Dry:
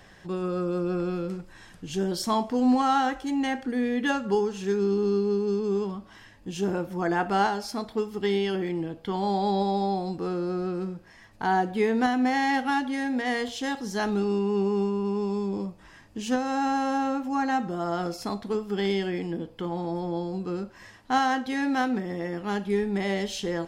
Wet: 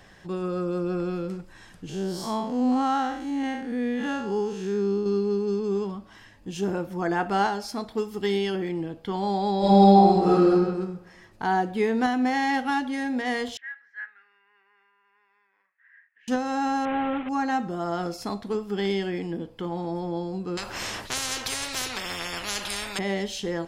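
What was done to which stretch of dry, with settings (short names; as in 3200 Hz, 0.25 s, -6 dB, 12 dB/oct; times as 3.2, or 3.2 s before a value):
1.89–5.06 time blur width 0.149 s
7.95–8.5 high shelf 5800 Hz +6.5 dB
9.58–10.52 reverb throw, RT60 1.1 s, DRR -9 dB
13.57–16.28 Butterworth band-pass 1800 Hz, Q 3.8
16.85–17.29 delta modulation 16 kbps, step -30 dBFS
20.57–22.99 spectral compressor 10:1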